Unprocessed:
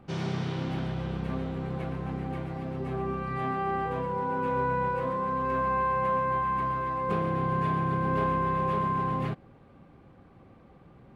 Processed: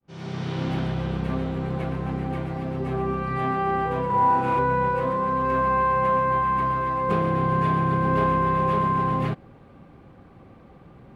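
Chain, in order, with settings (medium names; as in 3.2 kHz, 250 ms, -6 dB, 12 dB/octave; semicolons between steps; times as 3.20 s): fade-in on the opening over 0.67 s; 4.06–4.59 s: flutter echo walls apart 6.8 m, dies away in 1.3 s; trim +5.5 dB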